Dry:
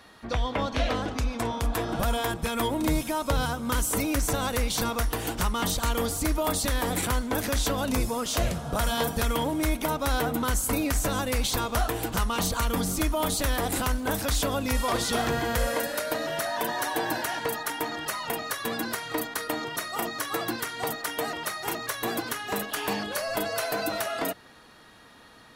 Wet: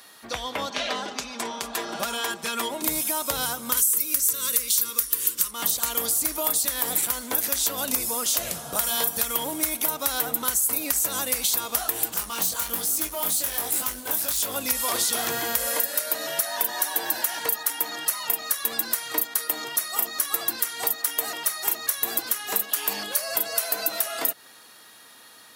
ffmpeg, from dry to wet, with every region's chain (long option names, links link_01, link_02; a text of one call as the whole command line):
ffmpeg -i in.wav -filter_complex "[0:a]asettb=1/sr,asplit=3[link_01][link_02][link_03];[link_01]atrim=end=0.704[link_04];[link_02]atrim=start=0.7:end=2.82,asetpts=PTS-STARTPTS,afade=type=in:duration=0.004:curve=qsin,afade=type=out:start_time=2.116:duration=0.004:curve=qsin,acrossover=split=170 7200:gain=0.251 1 0.158[link_05][link_06][link_07];[link_05][link_06][link_07]amix=inputs=3:normalize=0,aecho=1:1:5:0.53,atrim=end_sample=93492[link_08];[link_03]atrim=start=2.816[link_09];[link_04][link_08]acrossfade=duration=0.004:curve1=hsin:curve2=qsin[link_10];[link_10][link_09]acrossfade=duration=0.004:curve1=qsin:curve2=hsin,asettb=1/sr,asplit=3[link_11][link_12][link_13];[link_11]atrim=end=3.774[link_14];[link_12]atrim=start=3.77:end=5.51,asetpts=PTS-STARTPTS,afade=type=in:duration=0.004:curve=qsin,afade=type=out:start_time=1.736:duration=0.004:curve=qsin,asuperstop=centerf=760:order=8:qfactor=2,highshelf=frequency=3500:gain=10[link_15];[link_13]atrim=start=5.506[link_16];[link_14][link_15]acrossfade=duration=0.004:curve1=hsin:curve2=qsin[link_17];[link_17][link_16]acrossfade=duration=0.004:curve1=qsin:curve2=hsin,asettb=1/sr,asplit=3[link_18][link_19][link_20];[link_18]atrim=end=12.144[link_21];[link_19]atrim=start=12.14:end=14.56,asetpts=PTS-STARTPTS,afade=type=in:duration=0.004:curve=qsin,afade=type=out:start_time=2.416:duration=0.004:curve=qsin,volume=23.5dB,asoftclip=hard,volume=-23.5dB,flanger=delay=18.5:depth=4.6:speed=1.2[link_22];[link_20]atrim=start=14.556[link_23];[link_21][link_22]acrossfade=duration=0.004:curve1=hsin:curve2=qsin[link_24];[link_24][link_23]acrossfade=duration=0.004:curve1=qsin:curve2=hsin,highpass=frequency=390:poles=1,aemphasis=mode=production:type=75fm,acompressor=threshold=-20dB:ratio=6" out.wav